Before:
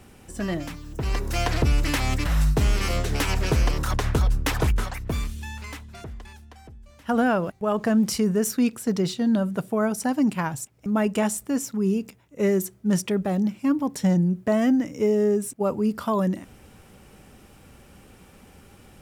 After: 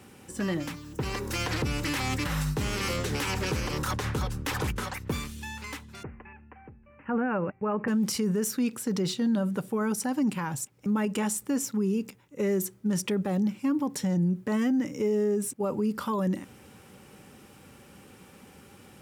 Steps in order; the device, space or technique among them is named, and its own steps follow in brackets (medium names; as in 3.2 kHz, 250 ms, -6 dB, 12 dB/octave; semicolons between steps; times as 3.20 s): PA system with an anti-feedback notch (high-pass 110 Hz 12 dB/octave; Butterworth band-stop 670 Hz, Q 6.1; peak limiter -20 dBFS, peak gain reduction 8.5 dB); 6.03–7.88 s: steep low-pass 2.7 kHz 96 dB/octave